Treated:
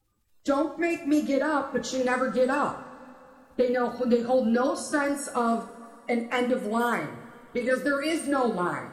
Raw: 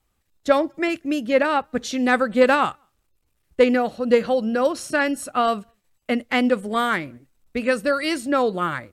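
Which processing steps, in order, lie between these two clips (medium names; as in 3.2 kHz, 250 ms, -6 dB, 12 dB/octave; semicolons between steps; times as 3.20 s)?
coarse spectral quantiser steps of 30 dB; dynamic bell 2.6 kHz, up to -8 dB, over -38 dBFS, Q 0.95; compression, threshold -18 dBFS, peak gain reduction 8 dB; two-slope reverb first 0.44 s, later 3 s, from -19 dB, DRR 3.5 dB; trim -2.5 dB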